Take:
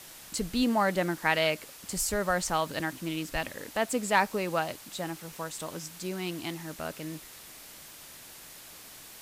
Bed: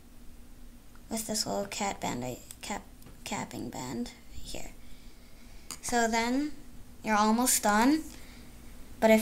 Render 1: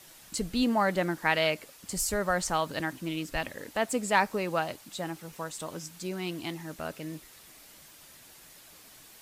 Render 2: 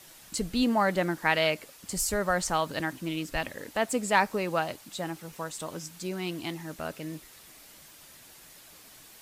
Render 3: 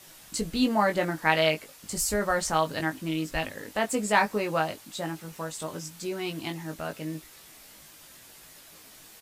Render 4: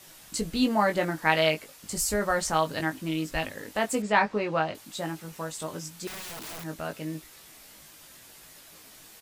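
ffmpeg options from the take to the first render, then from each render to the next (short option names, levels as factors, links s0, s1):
-af "afftdn=nr=6:nf=-49"
-af "volume=1.12"
-filter_complex "[0:a]asplit=2[s0][s1];[s1]adelay=19,volume=0.562[s2];[s0][s2]amix=inputs=2:normalize=0"
-filter_complex "[0:a]asettb=1/sr,asplit=3[s0][s1][s2];[s0]atrim=end=4.024[s3];[s1]atrim=start=4.02:end=4.75,asetpts=PTS-STARTPTS,afade=t=in:d=0.004:c=qsin,afade=t=out:st=0.726:d=0.004:c=qsin,lowpass=3900[s4];[s2]atrim=start=4.746[s5];[s3][s4]acrossfade=d=0.004:c1=hsin:c2=qsin[s6];[s6][s5]acrossfade=d=0.004:c1=qsin:c2=hsin,asettb=1/sr,asplit=3[s7][s8][s9];[s7]atrim=end=6.074[s10];[s8]atrim=start=6.07:end=6.64,asetpts=PTS-STARTPTS,afade=t=in:d=0.004:c=qsin,afade=t=out:st=0.566:d=0.004:c=qsin,aeval=exprs='(mod(53.1*val(0)+1,2)-1)/53.1':c=same[s11];[s9]atrim=start=6.636[s12];[s10][s11]acrossfade=d=0.004:c1=hsin:c2=qsin[s13];[s13][s12]acrossfade=d=0.004:c1=qsin:c2=hsin"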